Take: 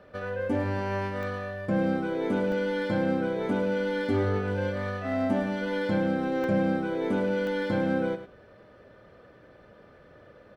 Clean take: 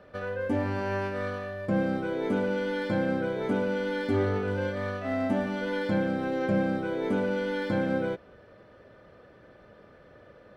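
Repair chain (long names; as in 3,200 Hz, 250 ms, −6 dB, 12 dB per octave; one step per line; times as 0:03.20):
repair the gap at 0:01.23/0:02.52/0:06.44/0:07.47, 1.5 ms
echo removal 103 ms −11 dB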